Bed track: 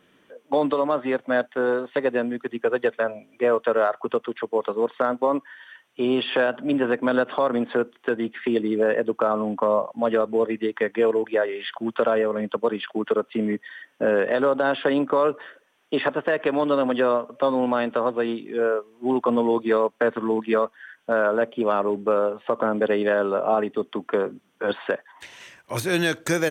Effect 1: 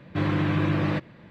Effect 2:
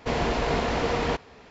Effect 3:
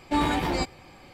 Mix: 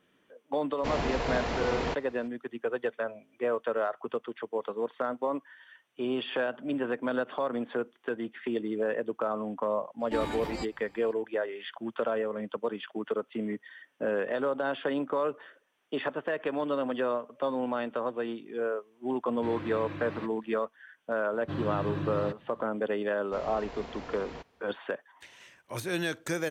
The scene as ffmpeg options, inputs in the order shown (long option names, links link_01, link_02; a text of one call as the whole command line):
ffmpeg -i bed.wav -i cue0.wav -i cue1.wav -i cue2.wav -filter_complex "[2:a]asplit=2[link_01][link_02];[1:a]asplit=2[link_03][link_04];[0:a]volume=-9dB[link_05];[link_03]equalizer=frequency=160:width_type=o:width=0.77:gain=-8.5[link_06];[link_04]equalizer=frequency=2200:width=4.3:gain=-10.5[link_07];[link_01]atrim=end=1.5,asetpts=PTS-STARTPTS,volume=-5.5dB,afade=type=in:duration=0.004:curve=hsin,afade=type=out:start_time=1.496:duration=0.004:curve=hsin,adelay=780[link_08];[3:a]atrim=end=1.13,asetpts=PTS-STARTPTS,volume=-10.5dB,afade=type=in:duration=0.004:curve=hsin,afade=type=out:start_time=1.126:duration=0.004:curve=hsin,adelay=10000[link_09];[link_06]atrim=end=1.3,asetpts=PTS-STARTPTS,volume=-13dB,afade=type=in:duration=0.004:curve=hsin,afade=type=out:start_time=1.296:duration=0.004:curve=hsin,adelay=19270[link_10];[link_07]atrim=end=1.3,asetpts=PTS-STARTPTS,volume=-9.5dB,afade=type=in:duration=0.004:curve=hsin,afade=type=out:start_time=1.296:duration=0.004:curve=hsin,adelay=21330[link_11];[link_02]atrim=end=1.5,asetpts=PTS-STARTPTS,volume=-17.5dB,afade=type=in:duration=0.004:curve=hsin,afade=type=out:start_time=1.496:duration=0.004:curve=hsin,adelay=23260[link_12];[link_05][link_08][link_09][link_10][link_11][link_12]amix=inputs=6:normalize=0" out.wav